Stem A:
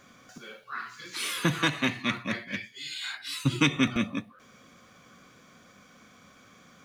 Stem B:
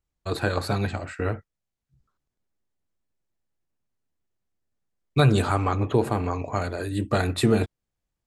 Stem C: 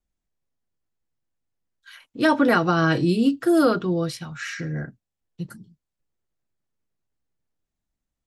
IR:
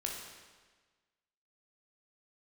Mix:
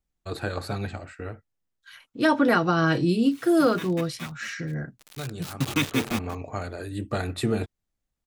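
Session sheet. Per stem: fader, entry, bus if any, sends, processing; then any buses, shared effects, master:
0:03.22 −22 dB → 0:03.97 −11 dB → 0:04.86 −11 dB → 0:05.54 −1.5 dB, 2.15 s, no send, high-shelf EQ 10,000 Hz −5 dB; bit reduction 5 bits; gate pattern "..xxxxxxxxxxx.x." 105 BPM −12 dB
−5.0 dB, 0.00 s, no send, notch filter 1,000 Hz, Q 12; automatic ducking −12 dB, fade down 0.90 s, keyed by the third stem
−2.0 dB, 0.00 s, no send, no processing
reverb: not used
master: no processing

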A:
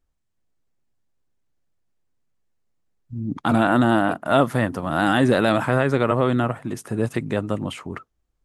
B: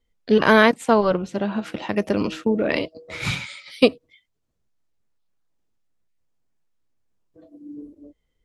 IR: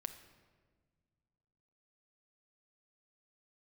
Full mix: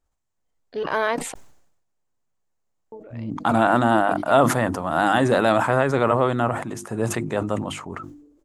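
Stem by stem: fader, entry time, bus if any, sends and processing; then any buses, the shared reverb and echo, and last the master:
−3.5 dB, 0.00 s, no send, parametric band 7,000 Hz +7 dB 0.58 octaves; mains-hum notches 50/100/150/200/250/300/350 Hz
−12.0 dB, 0.45 s, muted 0:01.34–0:02.92, no send, parametric band 210 Hz −13 dB 0.24 octaves; automatic ducking −15 dB, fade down 0.35 s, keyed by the first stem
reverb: not used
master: parametric band 850 Hz +7 dB 1.5 octaves; level that may fall only so fast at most 68 dB per second

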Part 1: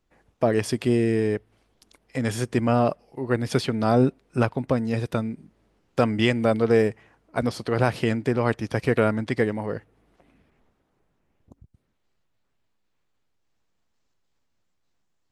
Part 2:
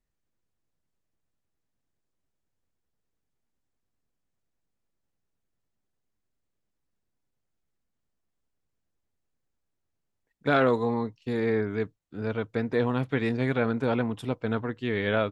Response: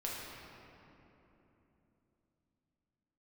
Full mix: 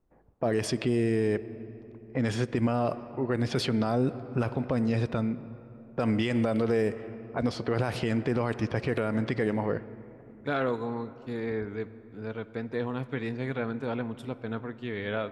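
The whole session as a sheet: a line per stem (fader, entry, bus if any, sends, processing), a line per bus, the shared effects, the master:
0.0 dB, 0.00 s, send −19 dB, low-pass that shuts in the quiet parts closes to 910 Hz, open at −17.5 dBFS
−7.0 dB, 0.00 s, send −15 dB, no processing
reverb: on, RT60 3.3 s, pre-delay 6 ms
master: brickwall limiter −16.5 dBFS, peak gain reduction 11.5 dB

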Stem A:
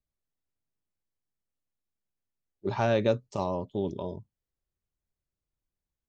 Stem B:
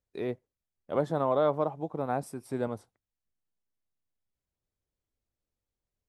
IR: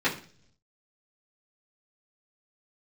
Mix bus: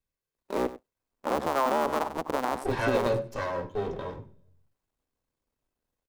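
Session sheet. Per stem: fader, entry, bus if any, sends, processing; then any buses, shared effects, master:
0.0 dB, 0.00 s, send −11.5 dB, echo send −19.5 dB, lower of the sound and its delayed copy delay 1.9 ms
+2.0 dB, 0.35 s, no send, echo send −16 dB, sub-harmonics by changed cycles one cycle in 2, muted; graphic EQ with 10 bands 125 Hz −10 dB, 250 Hz +7 dB, 500 Hz +4 dB, 1,000 Hz +9 dB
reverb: on, RT60 0.50 s, pre-delay 3 ms
echo: single-tap delay 96 ms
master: brickwall limiter −15 dBFS, peak gain reduction 9 dB

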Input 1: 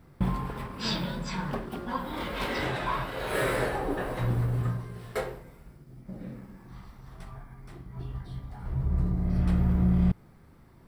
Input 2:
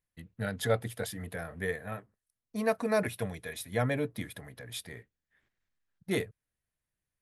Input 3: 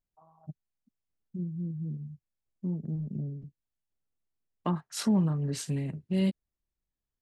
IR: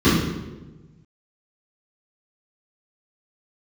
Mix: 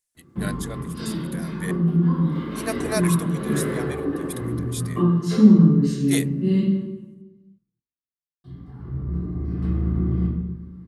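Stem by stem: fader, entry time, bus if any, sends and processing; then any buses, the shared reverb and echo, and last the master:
−10.5 dB, 0.15 s, muted 0:06.83–0:08.44, send −14.5 dB, high-shelf EQ 4,900 Hz −10 dB
+1.5 dB, 0.00 s, no send, parametric band 7,900 Hz +15 dB 1.7 octaves; sample-and-hold tremolo, depth 95%
−13.5 dB, 0.30 s, send −5 dB, no processing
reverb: on, RT60 1.1 s, pre-delay 3 ms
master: bass and treble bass −9 dB, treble +3 dB

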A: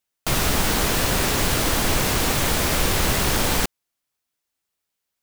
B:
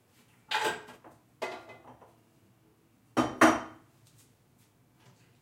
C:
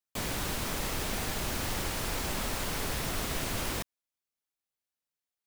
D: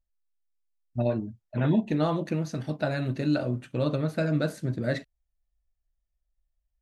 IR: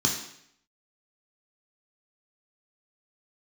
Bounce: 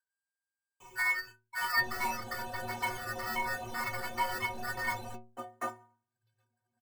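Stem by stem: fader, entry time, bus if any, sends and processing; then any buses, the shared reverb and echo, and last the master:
−7.5 dB, 1.50 s, no send, pitch vibrato 6.7 Hz 24 cents; high-shelf EQ 2,100 Hz −8 dB
−8.0 dB, 2.20 s, no send, high-shelf EQ 6,100 Hz −4 dB; sample-rate reduction 8,500 Hz, jitter 0%
−13.5 dB, 0.65 s, muted 0:01.32–0:03.05, no send, EQ curve with evenly spaced ripples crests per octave 0.72, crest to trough 17 dB
+1.5 dB, 0.00 s, no send, Butterworth low-pass 1,700 Hz; ring modulator with a square carrier 1,600 Hz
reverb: not used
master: reverb reduction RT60 0.81 s; parametric band 780 Hz +10 dB 1.5 octaves; stiff-string resonator 110 Hz, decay 0.49 s, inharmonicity 0.03

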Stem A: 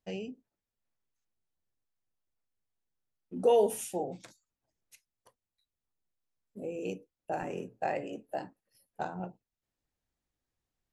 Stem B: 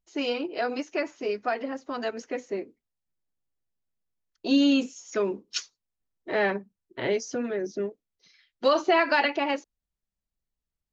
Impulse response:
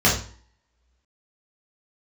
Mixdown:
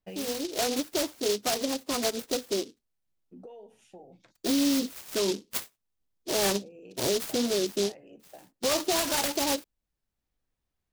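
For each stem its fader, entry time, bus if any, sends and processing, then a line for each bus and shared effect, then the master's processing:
+0.5 dB, 0.00 s, no send, low-pass filter 4,300 Hz 12 dB per octave; downward compressor 8 to 1, threshold −38 dBFS, peak gain reduction 17.5 dB; automatic ducking −8 dB, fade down 1.90 s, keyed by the second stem
−6.0 dB, 0.00 s, no send, automatic gain control gain up to 9 dB; short delay modulated by noise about 4,400 Hz, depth 0.16 ms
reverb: not used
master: brickwall limiter −18.5 dBFS, peak gain reduction 9 dB

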